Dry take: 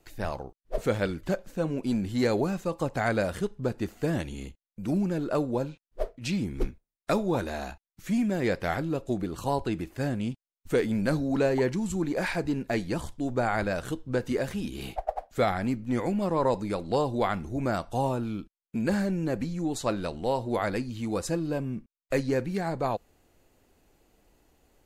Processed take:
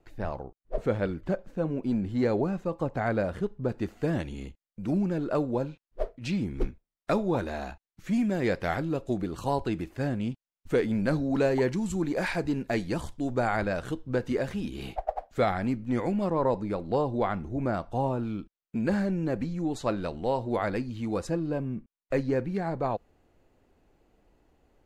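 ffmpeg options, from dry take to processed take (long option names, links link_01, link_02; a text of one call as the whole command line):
ffmpeg -i in.wav -af "asetnsamples=nb_out_samples=441:pad=0,asendcmd='3.69 lowpass f 3200;8.13 lowpass f 6000;9.96 lowpass f 3600;11.35 lowpass f 8600;13.57 lowpass f 3800;16.3 lowpass f 1500;18.19 lowpass f 2900;21.27 lowpass f 1800',lowpass=frequency=1300:poles=1" out.wav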